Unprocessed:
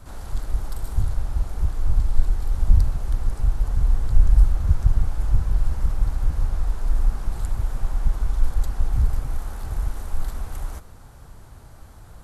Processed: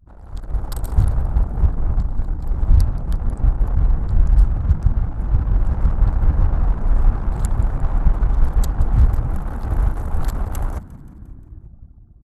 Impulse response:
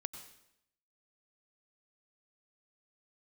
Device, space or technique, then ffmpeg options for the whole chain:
voice memo with heavy noise removal: -filter_complex "[0:a]highpass=frequency=52:poles=1,asettb=1/sr,asplit=3[link_01][link_02][link_03];[link_01]atrim=end=1.864[link_04];[link_02]atrim=start=1.86:end=2.43,asetpts=PTS-STARTPTS,afade=type=in:duration=0.004:curve=qsin,afade=type=out:start_time=0.566:duration=0.004:curve=qsin,lowshelf=frequency=440:gain=-5[link_05];[link_03]atrim=start=2.426[link_06];[link_04][link_05]acrossfade=duration=0.004:curve1=hsin:curve2=qsin[link_07];[link_07][link_06]acrossfade=duration=0.004:curve1=qsin:curve2=hsin,anlmdn=0.631,dynaudnorm=framelen=160:gausssize=7:maxgain=13dB,asplit=6[link_08][link_09][link_10][link_11][link_12][link_13];[link_09]adelay=176,afreqshift=57,volume=-20dB[link_14];[link_10]adelay=352,afreqshift=114,volume=-24.4dB[link_15];[link_11]adelay=528,afreqshift=171,volume=-28.9dB[link_16];[link_12]adelay=704,afreqshift=228,volume=-33.3dB[link_17];[link_13]adelay=880,afreqshift=285,volume=-37.7dB[link_18];[link_08][link_14][link_15][link_16][link_17][link_18]amix=inputs=6:normalize=0,volume=-1dB"

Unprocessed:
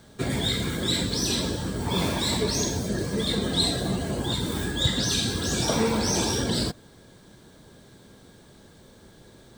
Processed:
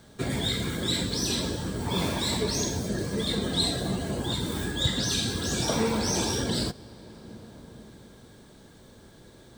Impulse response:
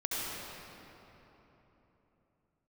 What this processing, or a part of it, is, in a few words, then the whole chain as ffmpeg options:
ducked reverb: -filter_complex "[0:a]asplit=3[link_01][link_02][link_03];[1:a]atrim=start_sample=2205[link_04];[link_02][link_04]afir=irnorm=-1:irlink=0[link_05];[link_03]apad=whole_len=422442[link_06];[link_05][link_06]sidechaincompress=threshold=-35dB:ratio=8:attack=16:release=861,volume=-14dB[link_07];[link_01][link_07]amix=inputs=2:normalize=0,volume=-2.5dB"

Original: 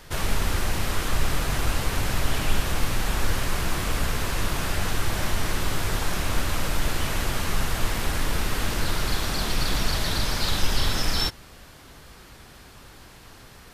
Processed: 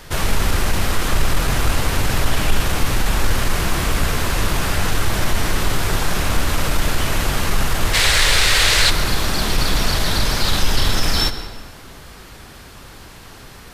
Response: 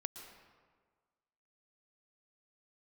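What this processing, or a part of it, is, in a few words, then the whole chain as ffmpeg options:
saturated reverb return: -filter_complex "[0:a]asplit=3[link_01][link_02][link_03];[link_01]afade=type=out:start_time=7.93:duration=0.02[link_04];[link_02]equalizer=frequency=250:width_type=o:width=1:gain=-12,equalizer=frequency=500:width_type=o:width=1:gain=5,equalizer=frequency=2000:width_type=o:width=1:gain=9,equalizer=frequency=4000:width_type=o:width=1:gain=11,equalizer=frequency=8000:width_type=o:width=1:gain=8,afade=type=in:start_time=7.93:duration=0.02,afade=type=out:start_time=8.89:duration=0.02[link_05];[link_03]afade=type=in:start_time=8.89:duration=0.02[link_06];[link_04][link_05][link_06]amix=inputs=3:normalize=0,asplit=2[link_07][link_08];[1:a]atrim=start_sample=2205[link_09];[link_08][link_09]afir=irnorm=-1:irlink=0,asoftclip=type=tanh:threshold=-17dB,volume=5dB[link_10];[link_07][link_10]amix=inputs=2:normalize=0"

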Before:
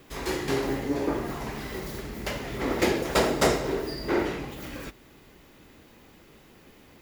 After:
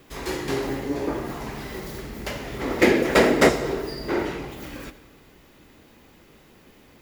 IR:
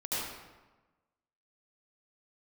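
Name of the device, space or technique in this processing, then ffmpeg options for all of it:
ducked reverb: -filter_complex "[0:a]asettb=1/sr,asplit=3[link_01][link_02][link_03];[link_01]atrim=end=2.814[link_04];[link_02]atrim=start=2.81:end=3.49,asetpts=PTS-STARTPTS,afade=type=in:duration=0.004:curve=qsin,afade=type=out:start_time=0.676:duration=0.004:curve=qsin,equalizer=frequency=250:width_type=o:width=1:gain=8,equalizer=frequency=500:width_type=o:width=1:gain=5,equalizer=frequency=2000:width_type=o:width=1:gain=9[link_05];[link_03]atrim=start=3.486[link_06];[link_04][link_05]acrossfade=duration=0.004:curve1=hsin:curve2=qsin[link_07];[link_07][link_06]acrossfade=duration=0.004:curve1=qsin:curve2=hsin,asplit=3[link_08][link_09][link_10];[1:a]atrim=start_sample=2205[link_11];[link_09][link_11]afir=irnorm=-1:irlink=0[link_12];[link_10]apad=whole_len=309481[link_13];[link_12][link_13]sidechaincompress=threshold=-24dB:ratio=8:attack=16:release=159,volume=-17.5dB[link_14];[link_08][link_14]amix=inputs=2:normalize=0"

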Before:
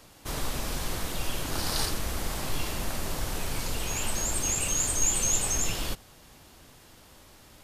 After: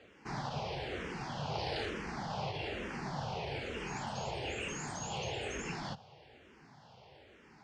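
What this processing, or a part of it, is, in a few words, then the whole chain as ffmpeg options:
barber-pole phaser into a guitar amplifier: -filter_complex "[0:a]asplit=2[link_01][link_02];[link_02]afreqshift=-1.1[link_03];[link_01][link_03]amix=inputs=2:normalize=1,asoftclip=type=tanh:threshold=-21.5dB,highpass=110,equalizer=frequency=140:width_type=q:width=4:gain=5,equalizer=frequency=290:width_type=q:width=4:gain=-5,equalizer=frequency=430:width_type=q:width=4:gain=4,equalizer=frequency=800:width_type=q:width=4:gain=6,equalizer=frequency=1200:width_type=q:width=4:gain=-5,equalizer=frequency=3800:width_type=q:width=4:gain=-7,lowpass=frequency=4400:width=0.5412,lowpass=frequency=4400:width=1.3066"

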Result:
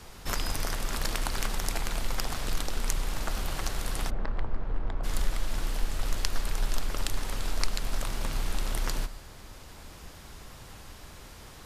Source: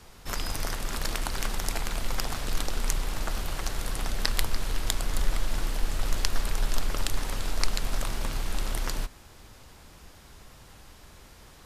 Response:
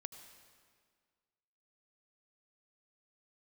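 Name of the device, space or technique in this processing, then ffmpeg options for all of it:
ducked reverb: -filter_complex "[0:a]asplit=3[link_01][link_02][link_03];[1:a]atrim=start_sample=2205[link_04];[link_02][link_04]afir=irnorm=-1:irlink=0[link_05];[link_03]apad=whole_len=514170[link_06];[link_05][link_06]sidechaincompress=threshold=-30dB:ratio=8:attack=33:release=1310,volume=10.5dB[link_07];[link_01][link_07]amix=inputs=2:normalize=0,asplit=3[link_08][link_09][link_10];[link_08]afade=type=out:start_time=4.09:duration=0.02[link_11];[link_09]lowpass=1100,afade=type=in:start_time=4.09:duration=0.02,afade=type=out:start_time=5.03:duration=0.02[link_12];[link_10]afade=type=in:start_time=5.03:duration=0.02[link_13];[link_11][link_12][link_13]amix=inputs=3:normalize=0,volume=-6dB"

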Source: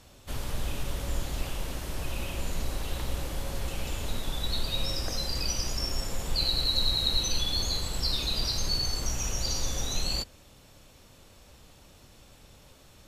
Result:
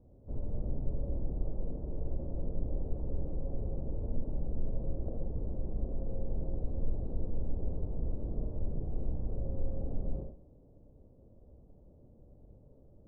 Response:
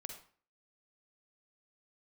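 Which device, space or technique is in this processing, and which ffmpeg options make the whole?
next room: -filter_complex "[0:a]lowpass=frequency=560:width=0.5412,lowpass=frequency=560:width=1.3066[link_01];[1:a]atrim=start_sample=2205[link_02];[link_01][link_02]afir=irnorm=-1:irlink=0,volume=2dB"

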